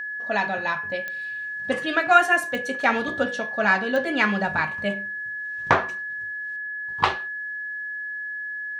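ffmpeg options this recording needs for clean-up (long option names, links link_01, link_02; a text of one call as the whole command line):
ffmpeg -i in.wav -af "adeclick=threshold=4,bandreject=frequency=1700:width=30" out.wav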